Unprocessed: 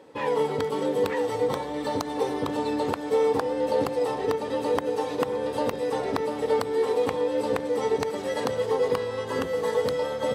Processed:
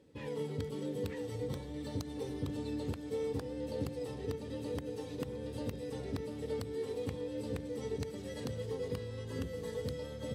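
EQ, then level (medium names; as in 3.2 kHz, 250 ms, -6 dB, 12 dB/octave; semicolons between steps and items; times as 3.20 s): amplifier tone stack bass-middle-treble 10-0-1; bass shelf 63 Hz +7 dB; +10.0 dB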